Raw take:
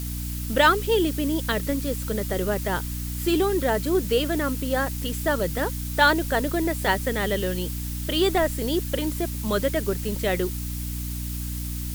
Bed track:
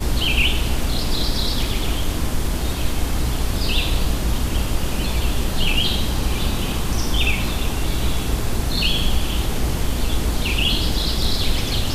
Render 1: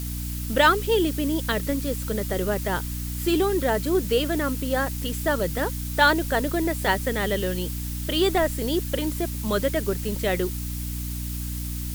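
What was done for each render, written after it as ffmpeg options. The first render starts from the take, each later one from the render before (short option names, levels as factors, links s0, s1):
-af anull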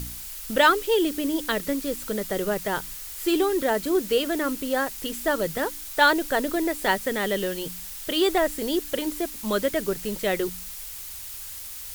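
-af "bandreject=f=60:t=h:w=4,bandreject=f=120:t=h:w=4,bandreject=f=180:t=h:w=4,bandreject=f=240:t=h:w=4,bandreject=f=300:t=h:w=4"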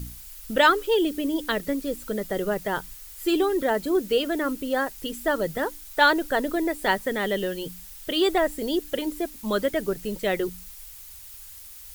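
-af "afftdn=nr=8:nf=-38"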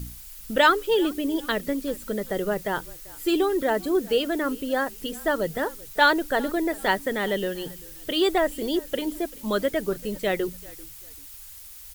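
-filter_complex "[0:a]asplit=3[s0][s1][s2];[s1]adelay=389,afreqshift=-39,volume=0.075[s3];[s2]adelay=778,afreqshift=-78,volume=0.024[s4];[s0][s3][s4]amix=inputs=3:normalize=0"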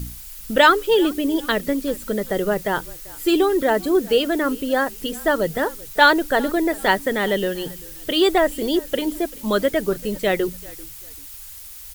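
-af "volume=1.78,alimiter=limit=0.891:level=0:latency=1"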